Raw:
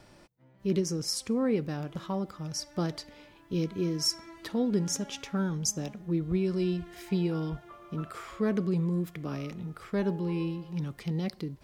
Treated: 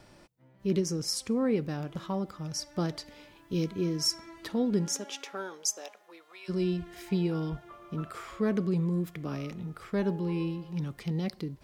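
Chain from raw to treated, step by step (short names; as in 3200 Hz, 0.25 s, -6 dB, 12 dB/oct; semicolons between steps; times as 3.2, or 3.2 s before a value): 3.06–3.72 high shelf 4600 Hz +5 dB; 4.85–6.48 HPF 230 Hz -> 880 Hz 24 dB/oct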